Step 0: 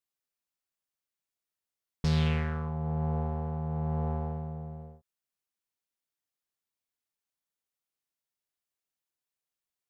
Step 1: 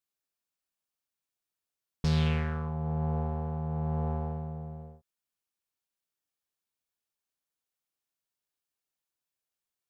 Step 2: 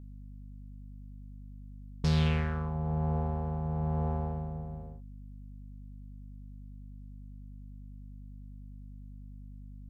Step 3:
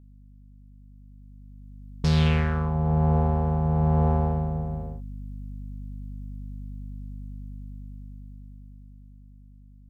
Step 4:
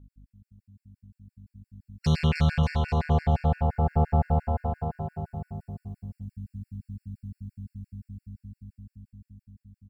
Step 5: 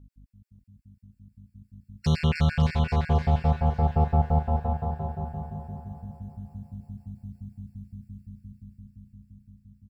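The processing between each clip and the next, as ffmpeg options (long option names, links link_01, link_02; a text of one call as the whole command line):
ffmpeg -i in.wav -af "bandreject=frequency=2000:width=19" out.wav
ffmpeg -i in.wav -af "aeval=exprs='val(0)+0.00562*(sin(2*PI*50*n/s)+sin(2*PI*2*50*n/s)/2+sin(2*PI*3*50*n/s)/3+sin(2*PI*4*50*n/s)/4+sin(2*PI*5*50*n/s)/5)':channel_layout=same" out.wav
ffmpeg -i in.wav -af "dynaudnorm=framelen=200:gausssize=21:maxgain=14dB,volume=-4dB" out.wav
ffmpeg -i in.wav -af "aecho=1:1:310|589|840.1|1066|1269:0.631|0.398|0.251|0.158|0.1,afftfilt=real='re*gt(sin(2*PI*5.8*pts/sr)*(1-2*mod(floor(b*sr/1024/1400),2)),0)':imag='im*gt(sin(2*PI*5.8*pts/sr)*(1-2*mod(floor(b*sr/1024/1400),2)),0)':win_size=1024:overlap=0.75" out.wav
ffmpeg -i in.wav -af "aecho=1:1:554|1108|1662|2216:0.316|0.108|0.0366|0.0124" out.wav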